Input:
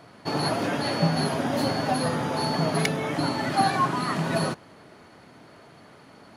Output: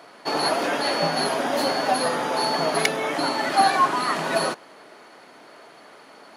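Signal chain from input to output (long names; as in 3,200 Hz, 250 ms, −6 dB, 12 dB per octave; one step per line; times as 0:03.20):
high-pass filter 390 Hz 12 dB per octave
level +5 dB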